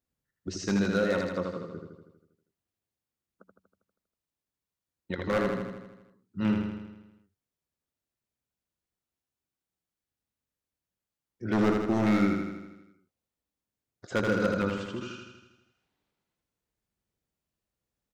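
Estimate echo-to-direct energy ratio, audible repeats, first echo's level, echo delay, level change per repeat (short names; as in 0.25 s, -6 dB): -2.0 dB, 7, -4.0 dB, 80 ms, -4.5 dB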